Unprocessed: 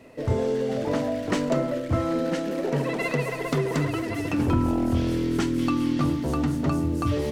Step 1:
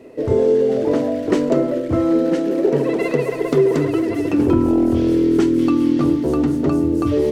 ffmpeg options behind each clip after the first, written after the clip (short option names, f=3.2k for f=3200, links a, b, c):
-af "equalizer=f=380:w=1.4:g=14"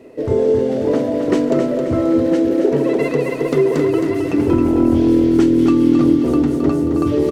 -af "aecho=1:1:267|534|801|1068|1335:0.473|0.213|0.0958|0.0431|0.0194"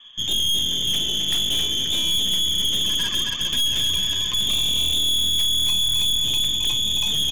-af "acrusher=bits=8:mix=0:aa=0.000001,lowpass=f=3.1k:t=q:w=0.5098,lowpass=f=3.1k:t=q:w=0.6013,lowpass=f=3.1k:t=q:w=0.9,lowpass=f=3.1k:t=q:w=2.563,afreqshift=-3700,aeval=exprs='(tanh(8.91*val(0)+0.75)-tanh(0.75))/8.91':c=same"